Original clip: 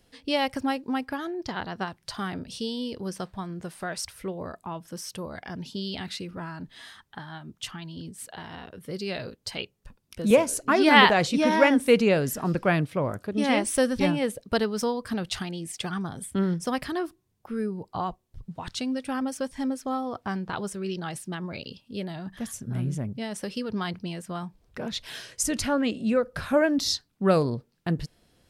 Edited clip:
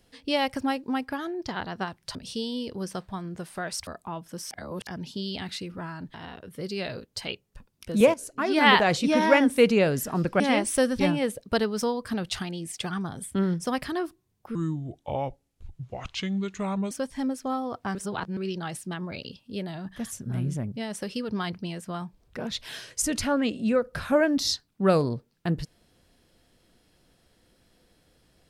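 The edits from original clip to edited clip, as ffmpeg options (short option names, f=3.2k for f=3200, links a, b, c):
-filter_complex "[0:a]asplit=12[a][b][c][d][e][f][g][h][i][j][k][l];[a]atrim=end=2.152[m];[b]atrim=start=2.398:end=4.122[n];[c]atrim=start=4.458:end=5.102[o];[d]atrim=start=5.098:end=5.462,asetpts=PTS-STARTPTS,areverse[p];[e]atrim=start=5.458:end=6.732[q];[f]atrim=start=8.438:end=10.44,asetpts=PTS-STARTPTS,afade=t=out:st=1.998:d=0.004:c=hsin:silence=0.223872[r];[g]atrim=start=10.44:end=12.702,asetpts=PTS-STARTPTS,afade=t=in:d=0.78:silence=0.223872[s];[h]atrim=start=13.398:end=17.554[t];[i]atrim=start=17.55:end=19.32,asetpts=PTS-STARTPTS,asetrate=33075,aresample=44100[u];[j]atrim=start=19.316:end=20.362[v];[k]atrim=start=20.358:end=20.782,asetpts=PTS-STARTPTS,areverse[w];[l]atrim=start=20.778[x];[m][n]acrossfade=d=0.004:c1=hsin:c2=hsin[y];[y][o]acrossfade=d=0.004:c1=hsin:c2=hsin[z];[z][p]acrossfade=d=0.004:c1=hsin:c2=hsin[aa];[aa][q]acrossfade=d=0.004:c1=hsin:c2=hsin[ab];[r][s]concat=n=2:v=0:a=1[ac];[ab][ac]acrossfade=d=0.004:c1=hsin:c2=hsin[ad];[ad][t]acrossfade=d=0.004:c1=hsin:c2=hsin[ae];[ae][u]acrossfade=d=0.004:c1=hsin:c2=hsin[af];[af][v]acrossfade=d=0.004:c1=hsin:c2=hsin[ag];[ag][w]acrossfade=d=0.004:c1=hsin:c2=hsin[ah];[ah][x]acrossfade=d=0.004:c1=hsin:c2=hsin"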